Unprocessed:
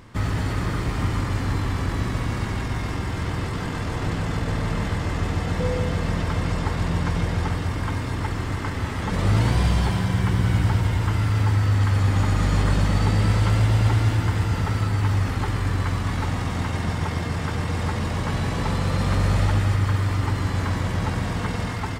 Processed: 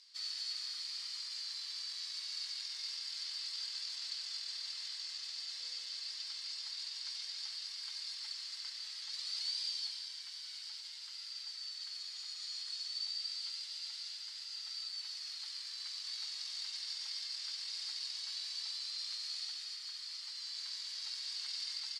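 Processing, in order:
speech leveller 2 s
four-pole ladder band-pass 4,800 Hz, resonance 80%
level +3 dB

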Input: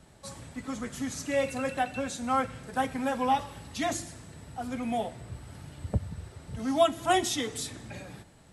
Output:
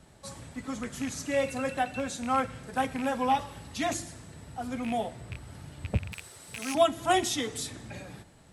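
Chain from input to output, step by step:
loose part that buzzes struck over −34 dBFS, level −28 dBFS
0:06.12–0:06.75: RIAA equalisation recording

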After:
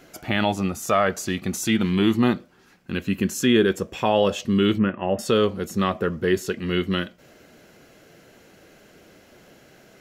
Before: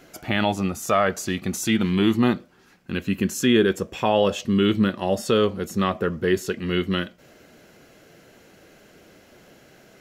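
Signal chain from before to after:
0:04.78–0:05.19: elliptic low-pass filter 2,800 Hz, stop band 40 dB

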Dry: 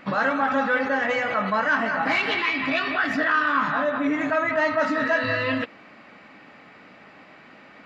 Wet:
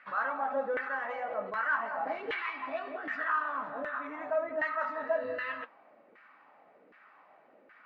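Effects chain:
auto-filter band-pass saw down 1.3 Hz 420–1,700 Hz
flanger 0.41 Hz, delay 1.4 ms, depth 8 ms, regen −73%

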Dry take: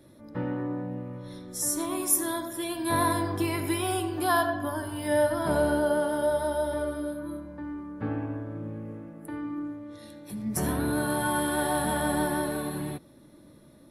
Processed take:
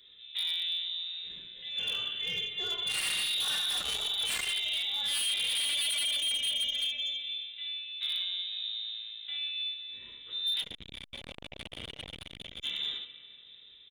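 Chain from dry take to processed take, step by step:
on a send: ambience of single reflections 23 ms −6.5 dB, 74 ms −4.5 dB
on the sum: four-comb reverb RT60 2.3 s, combs from 31 ms, DRR 12 dB
voice inversion scrambler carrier 3,800 Hz
wave folding −22.5 dBFS
0:10.62–0:12.61: spectral tilt −4.5 dB per octave
saturating transformer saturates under 1,000 Hz
level −3 dB

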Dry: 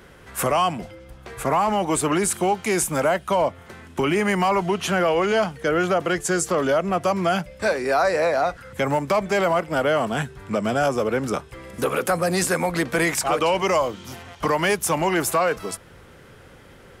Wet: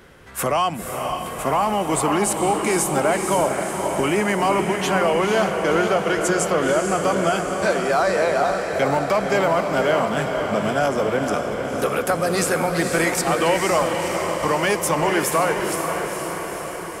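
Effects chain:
mains-hum notches 60/120/180 Hz
on a send: feedback delay with all-pass diffusion 501 ms, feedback 66%, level −5 dB

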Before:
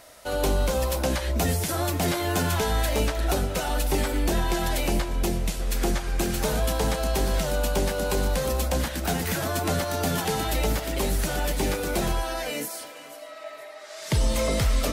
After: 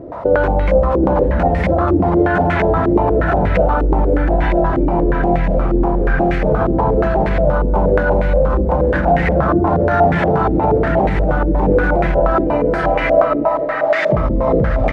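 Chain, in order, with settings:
high-pass filter 58 Hz 12 dB per octave
low-shelf EQ 310 Hz +7 dB
downward compressor 6 to 1, threshold −32 dBFS, peak gain reduction 16.5 dB
single-tap delay 773 ms −8 dB
convolution reverb RT60 0.90 s, pre-delay 6 ms, DRR 3.5 dB
boost into a limiter +25 dB
low-pass on a step sequencer 8.4 Hz 360–2,000 Hz
level −7 dB

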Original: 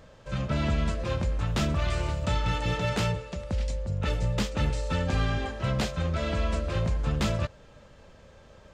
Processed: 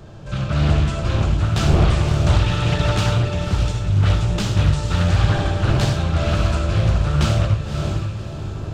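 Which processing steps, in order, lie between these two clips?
wind on the microphone 340 Hz −36 dBFS
thirty-one-band graphic EQ 100 Hz +7 dB, 250 Hz −12 dB, 500 Hz −9 dB, 1,000 Hz −5 dB, 2,000 Hz −7 dB
feedback delay with all-pass diffusion 567 ms, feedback 40%, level −7 dB
on a send at −3 dB: convolution reverb RT60 0.50 s, pre-delay 49 ms
on the sum: highs frequency-modulated by the lows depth 0.5 ms
level +6.5 dB

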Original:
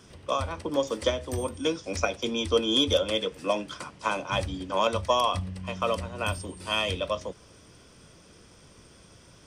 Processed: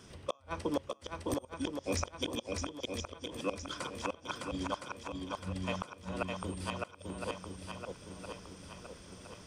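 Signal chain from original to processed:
gate with flip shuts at −19 dBFS, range −34 dB
feedback echo with a long and a short gap by turns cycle 1,014 ms, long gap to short 1.5 to 1, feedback 47%, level −3.5 dB
level −2 dB

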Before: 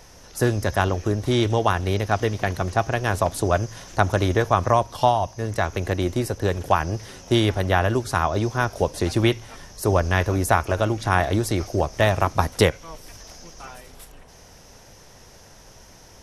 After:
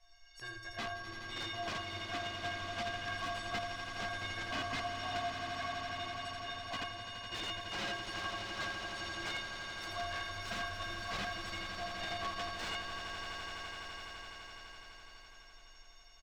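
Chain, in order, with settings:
guitar amp tone stack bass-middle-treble 10-0-10
stiff-string resonator 330 Hz, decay 0.49 s, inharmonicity 0.03
single-tap delay 82 ms −4.5 dB
wrap-around overflow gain 40.5 dB
high-frequency loss of the air 160 metres
echo that builds up and dies away 84 ms, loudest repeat 8, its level −11 dB
level +10 dB

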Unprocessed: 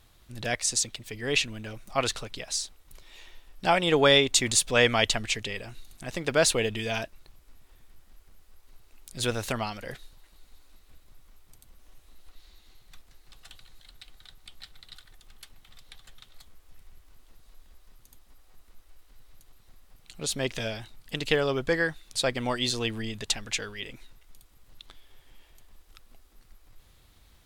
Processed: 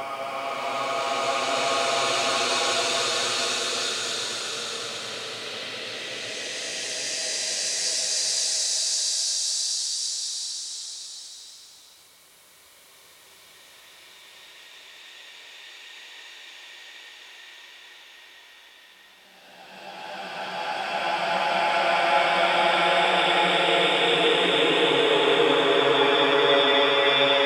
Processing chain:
meter weighting curve A
brickwall limiter −16.5 dBFS, peak gain reduction 10.5 dB
extreme stretch with random phases 12×, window 0.50 s, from 0:01.84
level +7 dB

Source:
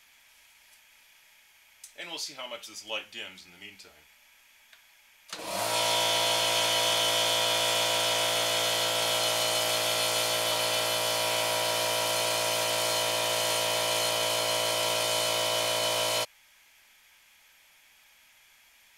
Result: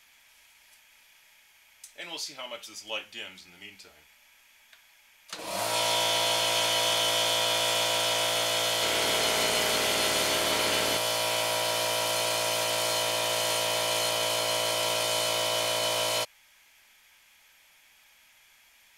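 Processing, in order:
0:08.74–0:10.97: delay with pitch and tempo change per echo 83 ms, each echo −7 semitones, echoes 3, each echo −6 dB

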